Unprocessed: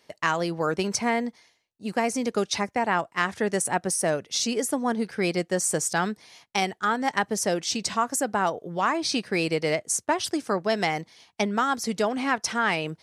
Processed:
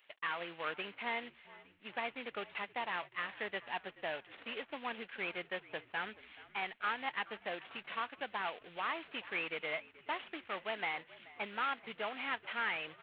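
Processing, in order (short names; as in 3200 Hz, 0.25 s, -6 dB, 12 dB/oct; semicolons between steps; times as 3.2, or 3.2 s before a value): CVSD 16 kbps; differentiator; on a send: frequency-shifting echo 0.43 s, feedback 57%, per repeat -54 Hz, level -20 dB; on the sum: gain +6.5 dB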